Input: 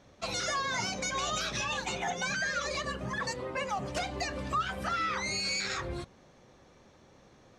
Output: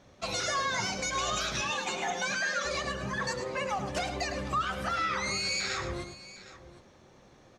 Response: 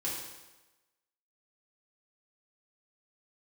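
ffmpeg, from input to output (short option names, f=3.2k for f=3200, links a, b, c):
-filter_complex "[0:a]asettb=1/sr,asplit=3[a][b][c];[a]atrim=end=1.614[d];[b]atrim=start=1.61:end=2.65,asetpts=PTS-STARTPTS,afade=t=in:d=0.004:c=qsin,afade=t=out:st=1.036:d=0.004:c=qsin,highpass=f=180:w=0.5412,highpass=f=180:w=1.3066[e];[c]atrim=start=2.646[f];[d][e]acrossfade=d=0.004:c1=hsin:c2=qsin[g];[g][f]acrossfade=d=0.004:c1=qsin:c2=hsin,aecho=1:1:105|761:0.335|0.141,asplit=2[h][i];[1:a]atrim=start_sample=2205,asetrate=48510,aresample=44100[j];[i][j]afir=irnorm=-1:irlink=0,volume=-16.5dB[k];[h][k]amix=inputs=2:normalize=0"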